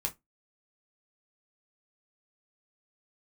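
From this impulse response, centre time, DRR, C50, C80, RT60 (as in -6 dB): 9 ms, 0.0 dB, 20.5 dB, 31.5 dB, 0.15 s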